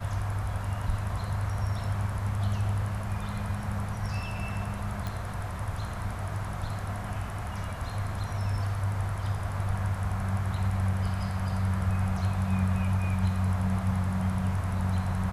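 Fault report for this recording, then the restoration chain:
5.07 pop -20 dBFS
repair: de-click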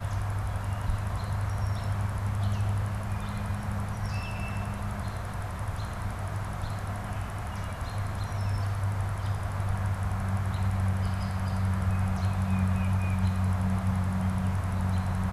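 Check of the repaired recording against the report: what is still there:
none

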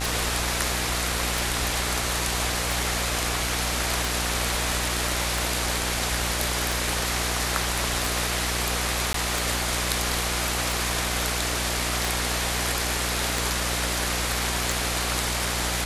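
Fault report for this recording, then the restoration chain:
buzz 60 Hz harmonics 37 -31 dBFS
tick 45 rpm
9.13–9.14 gap 13 ms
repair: de-click; de-hum 60 Hz, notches 37; interpolate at 9.13, 13 ms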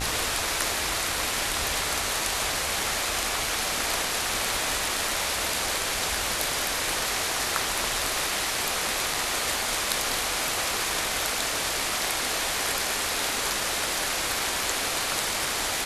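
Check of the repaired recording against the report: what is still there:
none

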